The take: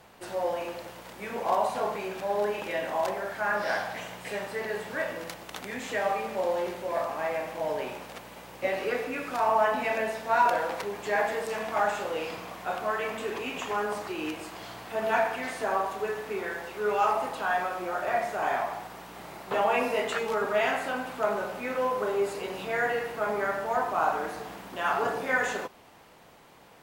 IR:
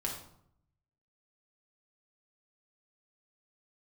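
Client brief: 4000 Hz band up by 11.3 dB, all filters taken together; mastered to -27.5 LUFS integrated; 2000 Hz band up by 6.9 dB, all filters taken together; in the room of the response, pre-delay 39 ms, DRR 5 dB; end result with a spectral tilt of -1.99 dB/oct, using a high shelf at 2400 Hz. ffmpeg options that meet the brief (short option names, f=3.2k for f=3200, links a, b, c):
-filter_complex "[0:a]equalizer=f=2k:t=o:g=4.5,highshelf=f=2.4k:g=5,equalizer=f=4k:t=o:g=9,asplit=2[a][b];[1:a]atrim=start_sample=2205,adelay=39[c];[b][c]afir=irnorm=-1:irlink=0,volume=-7.5dB[d];[a][d]amix=inputs=2:normalize=0,volume=-2.5dB"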